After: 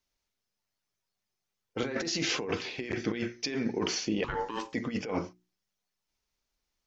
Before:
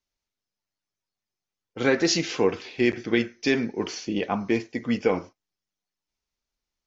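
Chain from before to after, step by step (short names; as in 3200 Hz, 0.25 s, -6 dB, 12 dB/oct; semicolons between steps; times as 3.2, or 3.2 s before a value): negative-ratio compressor -29 dBFS, ratio -1; notches 60/120/180/240/300/360 Hz; 4.24–4.74 ring modulator 670 Hz; gain -2 dB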